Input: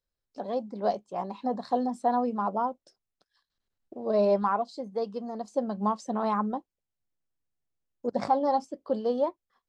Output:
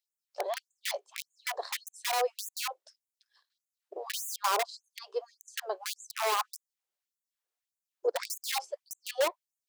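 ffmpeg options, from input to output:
-filter_complex "[0:a]acrossover=split=590|1100[a][b][c];[b]aeval=exprs='(mod(33.5*val(0)+1,2)-1)/33.5':c=same[d];[a][d][c]amix=inputs=3:normalize=0,afftfilt=real='re*gte(b*sr/1024,330*pow(6500/330,0.5+0.5*sin(2*PI*1.7*pts/sr)))':imag='im*gte(b*sr/1024,330*pow(6500/330,0.5+0.5*sin(2*PI*1.7*pts/sr)))':win_size=1024:overlap=0.75,volume=3.5dB"

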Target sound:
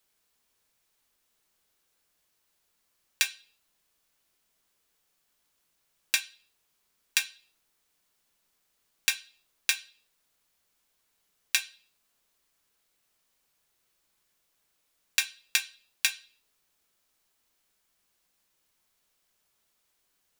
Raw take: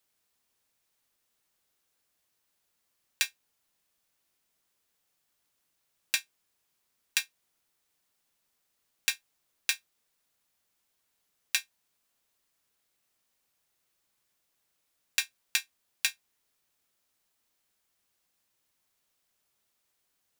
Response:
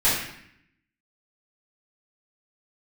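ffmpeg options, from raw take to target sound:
-filter_complex "[0:a]asplit=2[a][b];[1:a]atrim=start_sample=2205,asetrate=79380,aresample=44100,lowpass=8.5k[c];[b][c]afir=irnorm=-1:irlink=0,volume=-21dB[d];[a][d]amix=inputs=2:normalize=0,volume=2.5dB"

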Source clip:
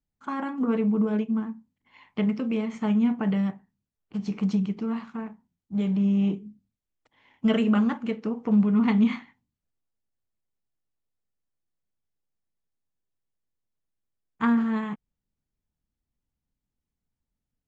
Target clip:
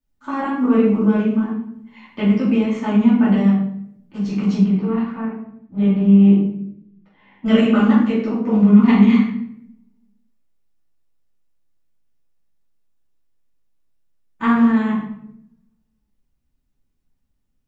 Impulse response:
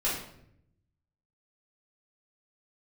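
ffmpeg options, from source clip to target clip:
-filter_complex "[0:a]asettb=1/sr,asplit=3[a][b][c];[a]atrim=end=4.584[d];[b]atrim=start=4.58:end=7.46,asetpts=PTS-STARTPTS,afade=t=in:d=0.004:c=qsin,afade=t=out:st=2.876:d=0.004:c=qsin,lowpass=2.8k[e];[c]atrim=start=7.456[f];[d][e]acrossfade=d=0.004:c1=hsin:c2=qsin[g];[g][f]acrossfade=d=0.004:c1=qsin:c2=hsin[h];[1:a]atrim=start_sample=2205[i];[h][i]afir=irnorm=-1:irlink=0"

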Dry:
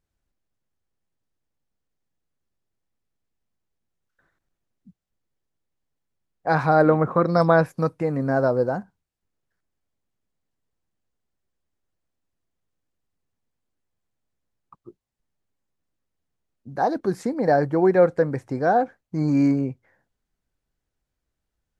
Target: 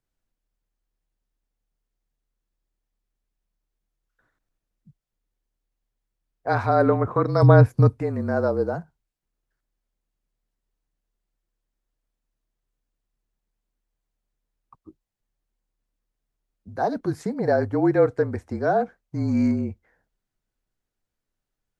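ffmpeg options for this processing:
-filter_complex "[0:a]asettb=1/sr,asplit=3[a][b][c];[a]atrim=end=7.424[d];[b]atrim=start=7.42:end=8.01,asetpts=PTS-STARTPTS,afade=t=in:d=0.004:c=qsin,afade=t=out:st=0.586:d=0.004:c=qsin,equalizer=f=170:t=o:w=2.1:g=12.5[e];[c]atrim=start=8.006[f];[d][e]acrossfade=d=0.004:c1=hsin:c2=qsin[g];[g][f]acrossfade=d=0.004:c1=qsin:c2=hsin,afreqshift=-36,volume=-2dB"

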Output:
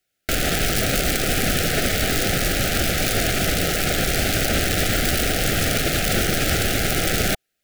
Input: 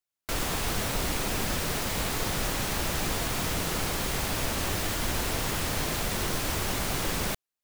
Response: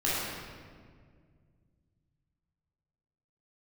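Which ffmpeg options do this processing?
-af "bass=f=250:g=0,treble=f=4k:g=-6,aeval=exprs='(mod(13.3*val(0)+1,2)-1)/13.3':c=same,asuperstop=centerf=1000:order=8:qfactor=2,alimiter=level_in=26dB:limit=-1dB:release=50:level=0:latency=1,volume=-9dB"

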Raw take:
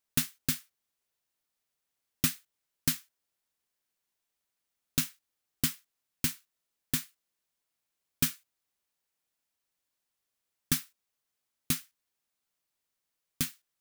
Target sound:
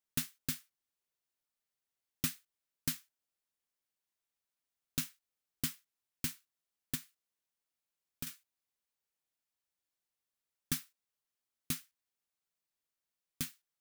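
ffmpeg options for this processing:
-filter_complex "[0:a]asettb=1/sr,asplit=3[a][b][c];[a]atrim=end=6.954[d];[b]atrim=start=6.95:end=8.27,asetpts=PTS-STARTPTS,afade=t=in:d=0.004:c=qsin,afade=t=out:st=1.316:d=0.004:c=qsin,acompressor=threshold=-36dB:ratio=2.5[e];[c]atrim=start=8.266[f];[d][e]acrossfade=d=0.004:c1=hsin:c2=qsin[g];[g][f]acrossfade=d=0.004:c1=qsin:c2=hsin,volume=-7dB"

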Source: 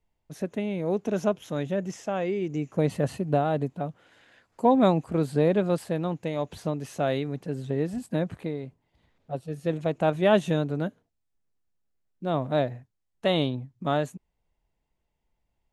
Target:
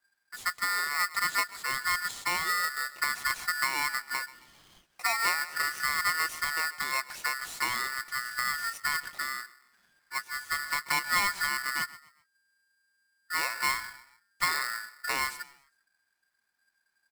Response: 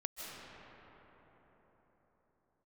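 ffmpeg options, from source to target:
-filter_complex "[0:a]highshelf=f=3.6k:g=8,asplit=4[a][b][c][d];[b]adelay=122,afreqshift=31,volume=-20dB[e];[c]adelay=244,afreqshift=62,volume=-29.1dB[f];[d]adelay=366,afreqshift=93,volume=-38.2dB[g];[a][e][f][g]amix=inputs=4:normalize=0,acompressor=threshold=-23dB:ratio=6,aecho=1:1:5.1:0.37,asetrate=40517,aresample=44100,aeval=exprs='val(0)*sgn(sin(2*PI*1600*n/s))':c=same,volume=-2.5dB"

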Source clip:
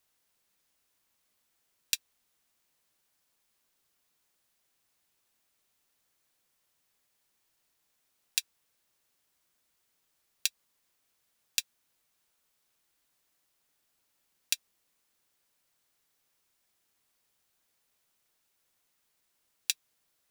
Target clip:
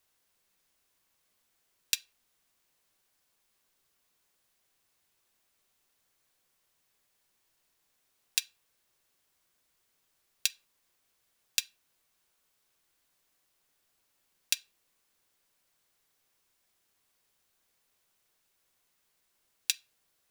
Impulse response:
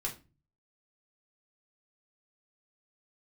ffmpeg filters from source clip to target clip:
-filter_complex "[0:a]asplit=2[a][b];[1:a]atrim=start_sample=2205,highshelf=f=7.1k:g=-11[c];[b][c]afir=irnorm=-1:irlink=0,volume=-11.5dB[d];[a][d]amix=inputs=2:normalize=0"

